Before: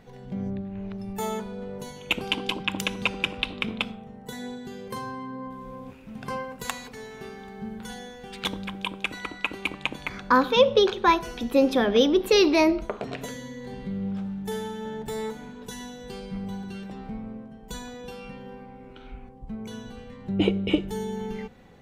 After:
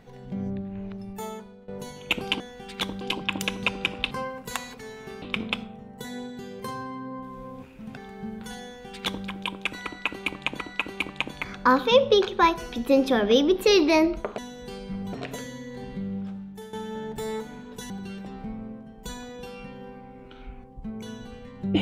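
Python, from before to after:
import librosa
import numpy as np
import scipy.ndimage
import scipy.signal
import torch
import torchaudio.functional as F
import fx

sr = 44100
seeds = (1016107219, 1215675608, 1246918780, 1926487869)

y = fx.edit(x, sr, fx.fade_out_to(start_s=0.75, length_s=0.93, floor_db=-17.5),
    fx.move(start_s=6.25, length_s=1.11, to_s=3.5),
    fx.duplicate(start_s=8.04, length_s=0.61, to_s=2.4),
    fx.repeat(start_s=9.24, length_s=0.74, count=2),
    fx.fade_out_to(start_s=13.84, length_s=0.79, floor_db=-13.5),
    fx.move(start_s=15.8, length_s=0.75, to_s=13.03), tone=tone)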